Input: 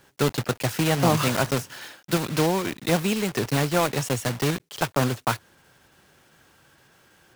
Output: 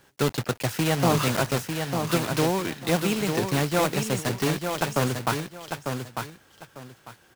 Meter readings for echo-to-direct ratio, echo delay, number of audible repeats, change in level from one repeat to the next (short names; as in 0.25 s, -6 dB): -6.0 dB, 0.898 s, 2, -13.0 dB